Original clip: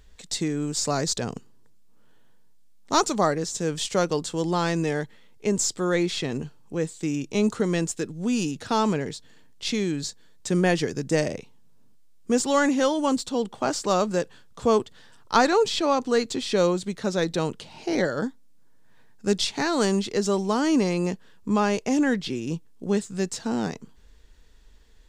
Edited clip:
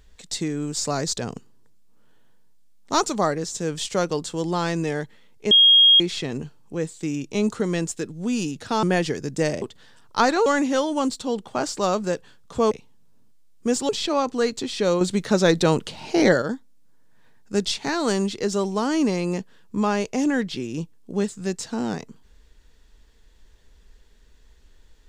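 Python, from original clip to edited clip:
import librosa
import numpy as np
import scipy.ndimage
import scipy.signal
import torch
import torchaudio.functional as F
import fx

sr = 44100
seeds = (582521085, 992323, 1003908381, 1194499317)

y = fx.edit(x, sr, fx.bleep(start_s=5.51, length_s=0.49, hz=3260.0, db=-10.0),
    fx.cut(start_s=8.83, length_s=1.73),
    fx.swap(start_s=11.35, length_s=1.18, other_s=14.78, other_length_s=0.84),
    fx.clip_gain(start_s=16.74, length_s=1.41, db=7.0), tone=tone)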